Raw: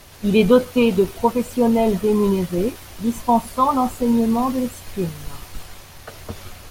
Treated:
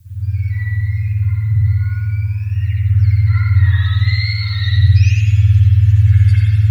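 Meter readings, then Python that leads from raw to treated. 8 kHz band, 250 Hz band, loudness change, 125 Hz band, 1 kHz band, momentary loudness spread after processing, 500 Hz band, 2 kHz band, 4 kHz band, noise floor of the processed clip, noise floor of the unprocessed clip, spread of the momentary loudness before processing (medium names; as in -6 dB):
no reading, under -15 dB, +5.0 dB, +21.0 dB, under -15 dB, 8 LU, under -40 dB, +7.5 dB, +6.0 dB, -22 dBFS, -42 dBFS, 20 LU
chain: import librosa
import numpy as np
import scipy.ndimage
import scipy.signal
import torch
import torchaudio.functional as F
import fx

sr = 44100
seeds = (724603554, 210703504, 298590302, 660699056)

y = fx.octave_mirror(x, sr, pivot_hz=990.0)
y = fx.recorder_agc(y, sr, target_db=-13.0, rise_db_per_s=59.0, max_gain_db=30)
y = scipy.signal.sosfilt(scipy.signal.ellip(3, 1.0, 60, [110.0, 1800.0], 'bandstop', fs=sr, output='sos'), y)
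y = fx.band_shelf(y, sr, hz=1900.0, db=-10.5, octaves=2.8)
y = fx.filter_sweep_lowpass(y, sr, from_hz=810.0, to_hz=3600.0, start_s=2.27, end_s=4.02, q=1.5)
y = fx.dmg_noise_colour(y, sr, seeds[0], colour='blue', level_db=-60.0)
y = y + 10.0 ** (-4.5 / 20.0) * np.pad(y, (int(87 * sr / 1000.0), 0))[:len(y)]
y = fx.rev_spring(y, sr, rt60_s=1.2, pass_ms=(56,), chirp_ms=60, drr_db=-10.0)
y = y * librosa.db_to_amplitude(-2.0)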